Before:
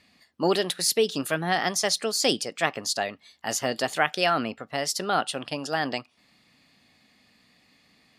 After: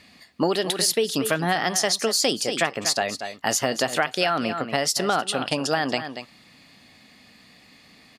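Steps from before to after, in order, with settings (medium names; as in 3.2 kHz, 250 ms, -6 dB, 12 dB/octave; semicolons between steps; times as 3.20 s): on a send: delay 234 ms -14 dB; on the sum: compression 6:1, threshold -28 dBFS, peak gain reduction 11.5 dB; trim +9 dB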